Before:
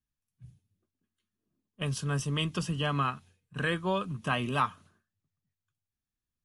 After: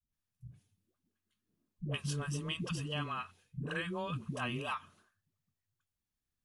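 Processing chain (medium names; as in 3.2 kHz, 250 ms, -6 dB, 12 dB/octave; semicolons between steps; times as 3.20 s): dynamic bell 2.6 kHz, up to +5 dB, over -47 dBFS, Q 3.4; compression, threshold -34 dBFS, peak gain reduction 12 dB; phase dispersion highs, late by 126 ms, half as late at 360 Hz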